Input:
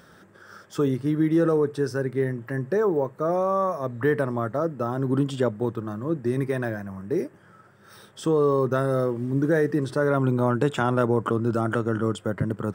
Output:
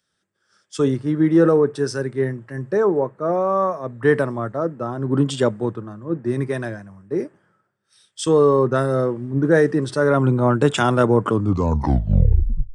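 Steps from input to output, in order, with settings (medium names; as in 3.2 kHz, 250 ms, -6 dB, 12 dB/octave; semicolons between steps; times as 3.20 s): tape stop on the ending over 1.46 s; resampled via 22.05 kHz; three bands expanded up and down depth 100%; trim +4.5 dB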